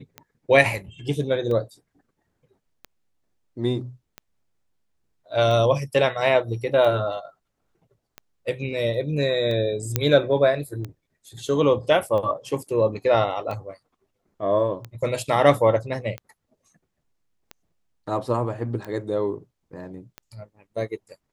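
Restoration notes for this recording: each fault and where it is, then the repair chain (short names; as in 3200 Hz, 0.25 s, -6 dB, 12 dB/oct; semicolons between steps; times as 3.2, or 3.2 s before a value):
tick 45 rpm -20 dBFS
9.96 pop -5 dBFS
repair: de-click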